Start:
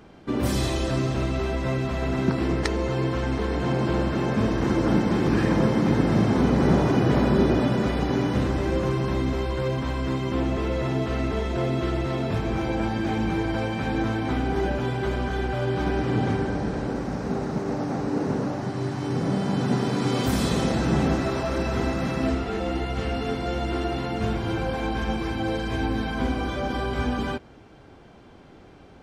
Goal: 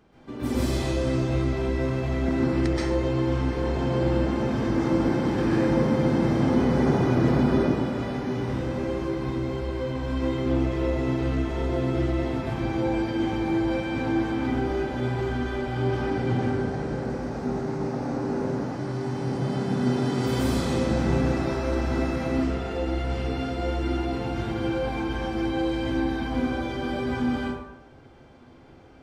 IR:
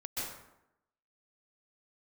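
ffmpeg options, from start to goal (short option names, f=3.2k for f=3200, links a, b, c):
-filter_complex "[0:a]asettb=1/sr,asplit=3[a][b][c];[a]atrim=end=7.604[d];[b]atrim=start=7.6:end=9.95,asetpts=PTS-STARTPTS,afade=t=in:d=0.004:c=qsin,afade=t=out:st=2.346:d=0.004:c=qsin,flanger=delay=18:depth=6.9:speed=1.5[e];[c]atrim=start=9.946[f];[d][e]acrossfade=d=0.004:c1=hsin:c2=qsin[g];[g][f]acrossfade=d=0.004:c1=qsin:c2=hsin[h];[1:a]atrim=start_sample=2205[i];[h][i]afir=irnorm=-1:irlink=0,volume=-5dB"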